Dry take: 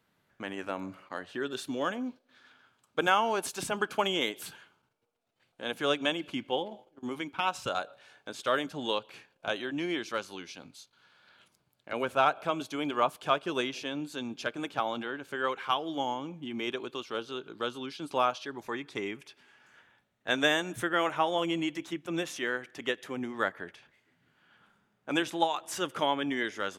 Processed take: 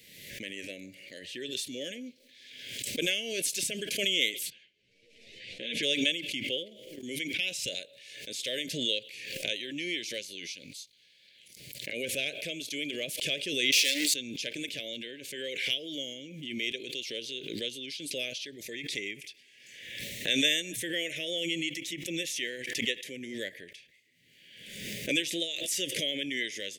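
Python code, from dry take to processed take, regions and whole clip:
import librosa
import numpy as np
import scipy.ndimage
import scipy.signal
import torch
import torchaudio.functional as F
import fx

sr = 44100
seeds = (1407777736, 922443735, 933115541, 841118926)

y = fx.chain(x, sr, fx.lowpass(hz=3900.0, slope=12),
    fx.ensemble(), at=(4.5, 5.83))
y = fx.chain(y, sr, fx.leveller(passes=5),
    fx.highpass(hz=520.0, slope=12),
    fx.high_shelf(hz=10000.0, db=-3.0), at=(13.72, 14.14))
y = scipy.signal.sosfilt(scipy.signal.ellip(3, 1.0, 40, [550.0, 2000.0], 'bandstop', fs=sr, output='sos'), y)
y = fx.tilt_shelf(y, sr, db=-7.5, hz=1200.0)
y = fx.pre_swell(y, sr, db_per_s=43.0)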